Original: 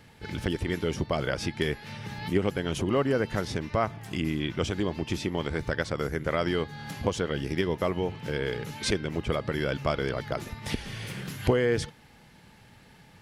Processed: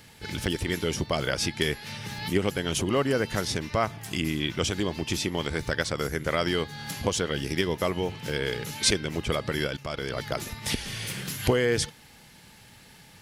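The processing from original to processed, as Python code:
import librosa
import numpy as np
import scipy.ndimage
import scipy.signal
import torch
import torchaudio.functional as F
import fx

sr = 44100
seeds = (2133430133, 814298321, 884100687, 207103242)

y = fx.high_shelf(x, sr, hz=3200.0, db=12.0)
y = fx.level_steps(y, sr, step_db=16, at=(9.67, 10.17))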